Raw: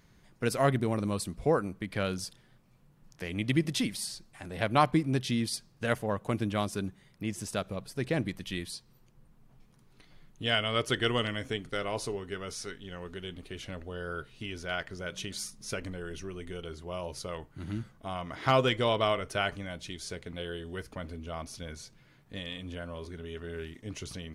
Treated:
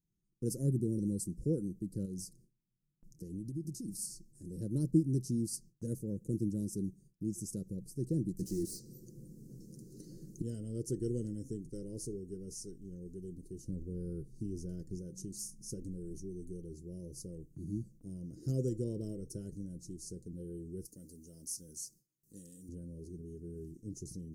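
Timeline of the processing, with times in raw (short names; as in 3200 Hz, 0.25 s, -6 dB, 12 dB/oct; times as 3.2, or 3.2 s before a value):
2.05–3.88 compressor, threshold -34 dBFS
8.39–10.42 overdrive pedal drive 33 dB, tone 2400 Hz, clips at -22 dBFS
13.68–14.99 low shelf 390 Hz +6 dB
20.85–22.69 tilt +3.5 dB/oct
whole clip: inverse Chebyshev band-stop 690–3600 Hz, stop band 40 dB; gate with hold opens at -51 dBFS; comb 5.9 ms, depth 32%; gain -2.5 dB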